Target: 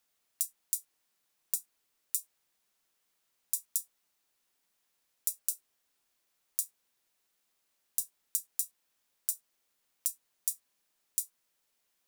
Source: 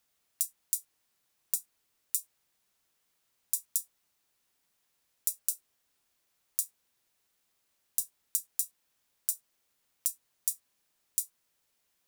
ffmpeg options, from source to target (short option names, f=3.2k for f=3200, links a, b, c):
-af "equalizer=f=85:w=0.94:g=-8,volume=-1.5dB"